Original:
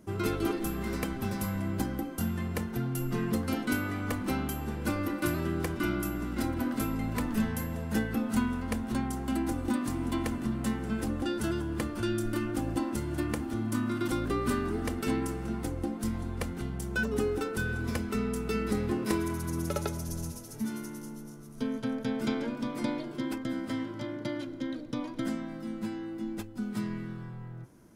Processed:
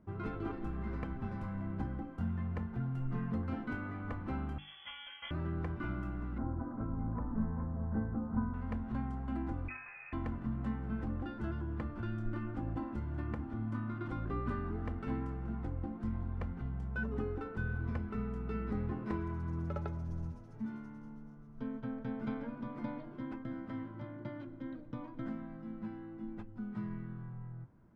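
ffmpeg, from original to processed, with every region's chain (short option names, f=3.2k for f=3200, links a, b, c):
-filter_complex "[0:a]asettb=1/sr,asplit=3[a][b][c];[a]atrim=end=4.584[d];[b]atrim=start=4.58:end=5.31,asetpts=PTS-STARTPTS,afade=t=in:d=0.004:c=qsin,afade=t=out:st=0.726:d=0.004:c=qsin,highpass=63,lowpass=f=3k:t=q:w=0.5098,lowpass=f=3k:t=q:w=0.6013,lowpass=f=3k:t=q:w=0.9,lowpass=f=3k:t=q:w=2.563,afreqshift=-3500[e];[c]atrim=start=5.306[f];[d][e]acrossfade=d=0.004:c1=hsin:c2=qsin[g];[g][f]acrossfade=d=0.004:c1=qsin:c2=hsin,asettb=1/sr,asplit=3[h][i][j];[h]atrim=end=6.384[k];[i]atrim=start=6.38:end=8.54,asetpts=PTS-STARTPTS,afade=t=in:d=0.004:c=qsin,afade=t=out:st=2.156:d=0.004:c=qsin,lowpass=f=1.3k:w=0.5412,lowpass=f=1.3k:w=1.3066,aecho=1:1:415:0.355,atrim=end_sample=95256[l];[j]atrim=start=8.536[m];[k][l]acrossfade=d=0.004:c1=hsin:c2=qsin[n];[n][m]acrossfade=d=0.004:c1=qsin:c2=hsin,asettb=1/sr,asplit=3[o][p][q];[o]atrim=end=9.684[r];[p]atrim=start=9.68:end=10.13,asetpts=PTS-STARTPTS,afade=t=in:d=0.004:c=qsin,afade=t=out:st=0.446:d=0.004:c=qsin,highpass=280,lowpass=f=2.4k:t=q:w=0.5098,lowpass=f=2.4k:t=q:w=0.6013,lowpass=f=2.4k:t=q:w=0.9,lowpass=f=2.4k:t=q:w=2.563,afreqshift=-2800[s];[q]atrim=start=10.126[t];[r][s]acrossfade=d=0.004:c1=hsin:c2=qsin[u];[u][t]acrossfade=d=0.004:c1=qsin:c2=hsin,lowpass=1.1k,equalizer=f=420:t=o:w=2.2:g=-10.5,bandreject=f=50:t=h:w=6,bandreject=f=100:t=h:w=6,bandreject=f=150:t=h:w=6,bandreject=f=200:t=h:w=6,bandreject=f=250:t=h:w=6,bandreject=f=300:t=h:w=6,bandreject=f=350:t=h:w=6"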